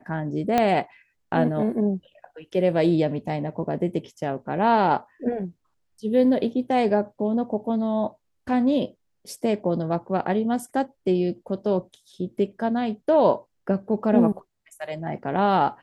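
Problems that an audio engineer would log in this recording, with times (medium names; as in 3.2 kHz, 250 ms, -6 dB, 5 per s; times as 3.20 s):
0.58 s: pop -8 dBFS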